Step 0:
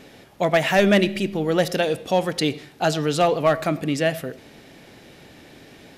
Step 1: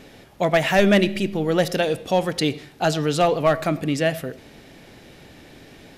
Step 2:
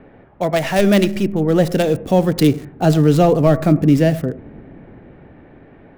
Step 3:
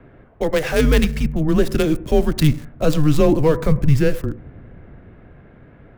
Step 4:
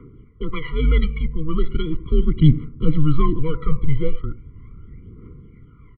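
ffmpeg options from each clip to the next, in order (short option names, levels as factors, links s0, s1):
-af "lowshelf=f=60:g=10"
-filter_complex "[0:a]acrossover=split=380|870|1900[s0][s1][s2][s3];[s0]dynaudnorm=f=260:g=11:m=3.76[s4];[s2]alimiter=level_in=1.26:limit=0.0631:level=0:latency=1,volume=0.794[s5];[s3]acrusher=bits=4:dc=4:mix=0:aa=0.000001[s6];[s4][s1][s5][s6]amix=inputs=4:normalize=0,volume=1.26"
-af "afreqshift=-150,volume=0.891"
-af "aphaser=in_gain=1:out_gain=1:delay=2:decay=0.69:speed=0.38:type=triangular,aresample=8000,aresample=44100,afftfilt=real='re*eq(mod(floor(b*sr/1024/480),2),0)':imag='im*eq(mod(floor(b*sr/1024/480),2),0)':win_size=1024:overlap=0.75,volume=0.531"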